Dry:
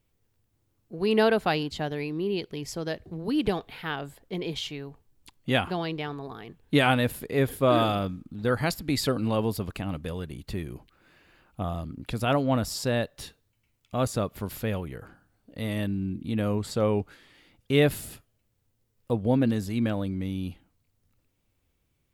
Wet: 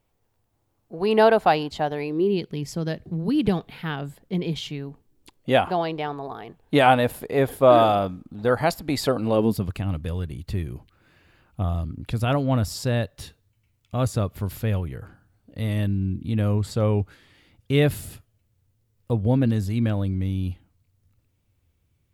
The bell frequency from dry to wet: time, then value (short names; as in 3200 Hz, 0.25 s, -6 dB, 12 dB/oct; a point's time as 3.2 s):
bell +10 dB 1.3 oct
2 s 790 Hz
2.44 s 170 Hz
4.77 s 170 Hz
5.65 s 730 Hz
9.22 s 730 Hz
9.72 s 91 Hz